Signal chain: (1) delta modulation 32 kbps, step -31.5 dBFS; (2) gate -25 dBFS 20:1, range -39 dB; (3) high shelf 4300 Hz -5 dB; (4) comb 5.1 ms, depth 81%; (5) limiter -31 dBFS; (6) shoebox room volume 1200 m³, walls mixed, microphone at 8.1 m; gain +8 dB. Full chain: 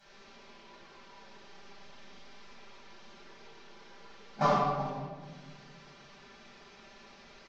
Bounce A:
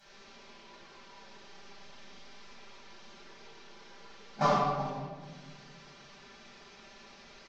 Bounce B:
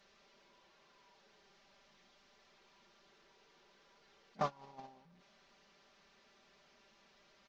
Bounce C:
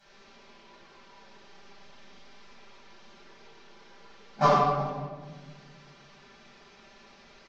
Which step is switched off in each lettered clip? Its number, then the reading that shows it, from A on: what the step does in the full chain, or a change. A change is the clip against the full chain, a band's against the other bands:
3, 4 kHz band +2.5 dB; 6, echo-to-direct 10.0 dB to none; 5, momentary loudness spread change -3 LU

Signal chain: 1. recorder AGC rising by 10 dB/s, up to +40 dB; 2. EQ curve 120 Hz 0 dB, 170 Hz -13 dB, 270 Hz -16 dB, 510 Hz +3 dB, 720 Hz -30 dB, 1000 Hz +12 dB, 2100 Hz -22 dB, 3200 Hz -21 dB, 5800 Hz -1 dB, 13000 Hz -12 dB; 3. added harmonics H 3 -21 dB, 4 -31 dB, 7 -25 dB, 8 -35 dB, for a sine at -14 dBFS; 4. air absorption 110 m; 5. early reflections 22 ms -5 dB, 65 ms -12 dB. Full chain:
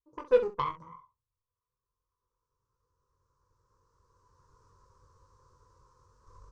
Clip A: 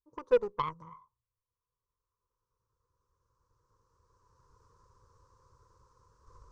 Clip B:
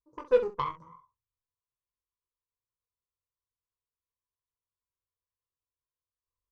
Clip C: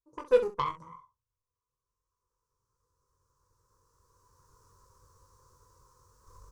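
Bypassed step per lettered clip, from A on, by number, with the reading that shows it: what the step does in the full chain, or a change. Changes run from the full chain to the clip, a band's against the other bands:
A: 5, echo-to-direct -4.0 dB to none; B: 1, momentary loudness spread change -4 LU; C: 4, 4 kHz band +2.0 dB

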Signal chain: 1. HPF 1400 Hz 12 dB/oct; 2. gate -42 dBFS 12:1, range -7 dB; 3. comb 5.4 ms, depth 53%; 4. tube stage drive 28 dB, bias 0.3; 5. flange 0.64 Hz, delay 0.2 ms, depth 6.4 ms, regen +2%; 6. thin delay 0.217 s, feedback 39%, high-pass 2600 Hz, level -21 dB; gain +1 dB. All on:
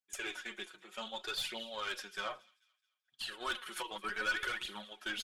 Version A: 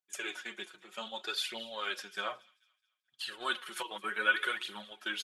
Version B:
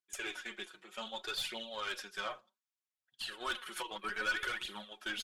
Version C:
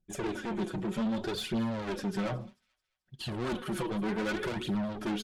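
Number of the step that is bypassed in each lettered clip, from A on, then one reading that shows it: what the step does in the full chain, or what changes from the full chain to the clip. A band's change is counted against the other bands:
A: 4, crest factor change +8.5 dB; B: 6, echo-to-direct -27.5 dB to none; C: 1, 125 Hz band +24.5 dB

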